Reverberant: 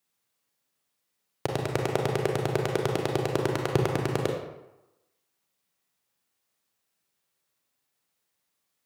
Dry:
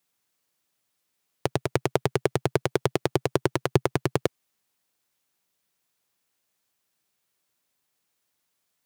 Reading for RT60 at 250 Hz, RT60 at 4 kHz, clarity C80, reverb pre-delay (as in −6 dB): 0.90 s, 0.60 s, 6.5 dB, 29 ms